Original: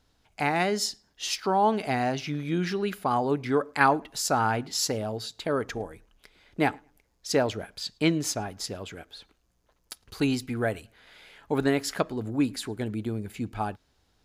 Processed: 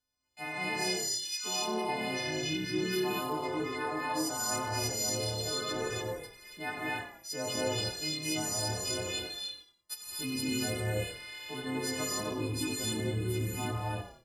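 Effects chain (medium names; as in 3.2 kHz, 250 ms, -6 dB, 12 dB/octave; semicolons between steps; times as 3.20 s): partials quantised in pitch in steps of 3 st; gate -53 dBFS, range -19 dB; reverse; compression 5:1, threshold -33 dBFS, peak gain reduction 17.5 dB; reverse; flange 0.68 Hz, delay 7.4 ms, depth 3.7 ms, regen +65%; on a send: frequency-shifting echo 97 ms, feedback 31%, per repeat -34 Hz, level -12.5 dB; on the sum: gated-style reverb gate 320 ms rising, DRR -5.5 dB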